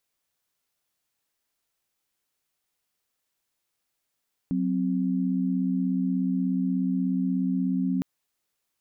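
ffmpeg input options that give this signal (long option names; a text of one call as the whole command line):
ffmpeg -f lavfi -i "aevalsrc='0.0531*(sin(2*PI*185*t)+sin(2*PI*261.63*t))':duration=3.51:sample_rate=44100" out.wav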